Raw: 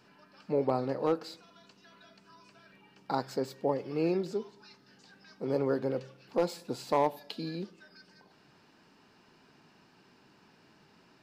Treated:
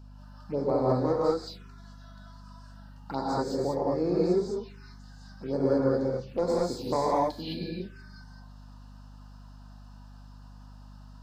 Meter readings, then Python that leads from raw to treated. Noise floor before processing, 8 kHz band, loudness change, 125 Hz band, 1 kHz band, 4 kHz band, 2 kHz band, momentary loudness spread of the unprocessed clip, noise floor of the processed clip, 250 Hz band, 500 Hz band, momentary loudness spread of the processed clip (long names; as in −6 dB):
−63 dBFS, +4.0 dB, +4.0 dB, +6.5 dB, +3.5 dB, +3.0 dB, 0.0 dB, 11 LU, −48 dBFS, +5.0 dB, +4.5 dB, 12 LU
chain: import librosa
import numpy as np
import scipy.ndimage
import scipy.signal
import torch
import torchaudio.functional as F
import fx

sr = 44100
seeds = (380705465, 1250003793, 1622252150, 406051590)

y = fx.rev_gated(x, sr, seeds[0], gate_ms=240, shape='rising', drr_db=-5.5)
y = fx.env_phaser(y, sr, low_hz=350.0, high_hz=2800.0, full_db=-25.0)
y = fx.add_hum(y, sr, base_hz=50, snr_db=17)
y = y * librosa.db_to_amplitude(-1.0)